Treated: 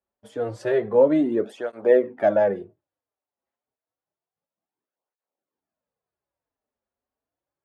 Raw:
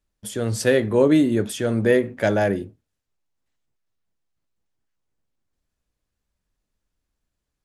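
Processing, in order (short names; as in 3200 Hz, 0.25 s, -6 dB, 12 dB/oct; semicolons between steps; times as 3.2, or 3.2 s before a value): band-pass 670 Hz, Q 1.3; tape flanging out of phase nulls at 0.29 Hz, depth 6.8 ms; gain +5.5 dB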